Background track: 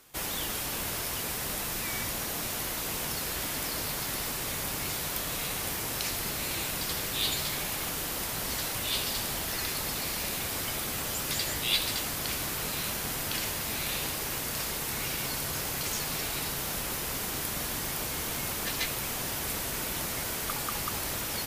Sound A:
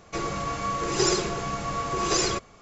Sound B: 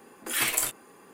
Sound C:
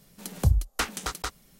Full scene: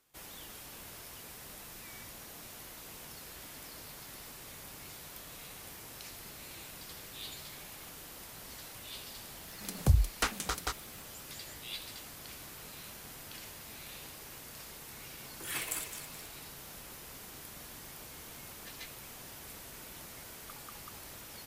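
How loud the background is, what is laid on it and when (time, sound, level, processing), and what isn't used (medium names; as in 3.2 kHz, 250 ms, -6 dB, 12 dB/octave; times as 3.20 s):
background track -15 dB
9.43 s: add C -3 dB
15.14 s: add B -11.5 dB + backward echo that repeats 106 ms, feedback 67%, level -8.5 dB
not used: A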